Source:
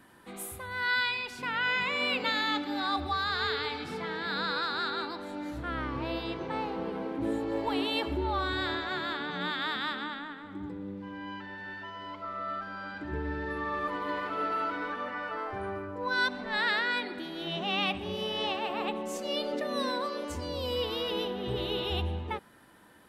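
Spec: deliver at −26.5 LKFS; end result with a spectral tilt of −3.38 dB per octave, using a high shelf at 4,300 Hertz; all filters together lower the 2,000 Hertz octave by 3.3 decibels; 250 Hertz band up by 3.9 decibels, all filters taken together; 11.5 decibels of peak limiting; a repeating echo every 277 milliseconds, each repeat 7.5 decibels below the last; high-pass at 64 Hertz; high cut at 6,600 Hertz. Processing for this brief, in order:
high-pass filter 64 Hz
low-pass filter 6,600 Hz
parametric band 250 Hz +5 dB
parametric band 2,000 Hz −3 dB
high-shelf EQ 4,300 Hz −8.5 dB
brickwall limiter −28.5 dBFS
repeating echo 277 ms, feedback 42%, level −7.5 dB
level +10 dB

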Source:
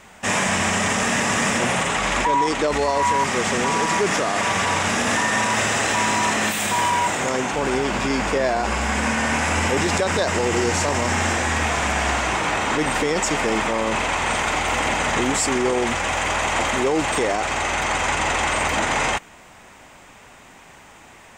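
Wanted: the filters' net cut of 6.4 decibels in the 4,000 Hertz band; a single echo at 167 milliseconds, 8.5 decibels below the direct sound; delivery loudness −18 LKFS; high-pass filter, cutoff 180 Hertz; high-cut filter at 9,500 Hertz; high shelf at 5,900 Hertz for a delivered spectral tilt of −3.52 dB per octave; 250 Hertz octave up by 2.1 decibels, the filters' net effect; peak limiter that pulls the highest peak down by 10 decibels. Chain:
high-pass filter 180 Hz
low-pass filter 9,500 Hz
parametric band 250 Hz +4 dB
parametric band 4,000 Hz −8 dB
high-shelf EQ 5,900 Hz −3.5 dB
brickwall limiter −18.5 dBFS
single-tap delay 167 ms −8.5 dB
level +8 dB

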